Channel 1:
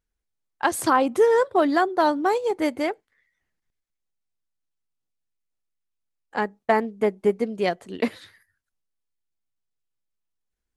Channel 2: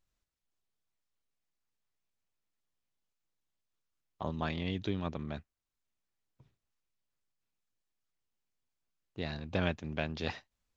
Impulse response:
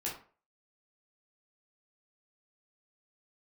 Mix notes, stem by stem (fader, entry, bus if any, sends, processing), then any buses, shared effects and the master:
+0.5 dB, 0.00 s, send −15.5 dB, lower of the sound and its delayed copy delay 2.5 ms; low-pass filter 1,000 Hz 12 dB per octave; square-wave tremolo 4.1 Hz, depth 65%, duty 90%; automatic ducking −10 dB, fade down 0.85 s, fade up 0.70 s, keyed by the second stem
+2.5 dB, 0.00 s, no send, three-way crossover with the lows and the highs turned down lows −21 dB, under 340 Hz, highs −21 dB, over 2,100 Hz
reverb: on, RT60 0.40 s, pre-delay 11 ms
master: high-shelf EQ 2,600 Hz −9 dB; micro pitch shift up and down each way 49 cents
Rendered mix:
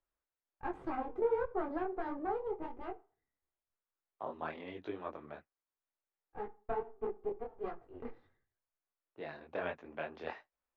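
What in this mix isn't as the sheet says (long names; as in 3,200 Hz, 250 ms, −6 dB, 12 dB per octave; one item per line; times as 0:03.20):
stem 1 +0.5 dB → −9.5 dB
master: missing high-shelf EQ 2,600 Hz −9 dB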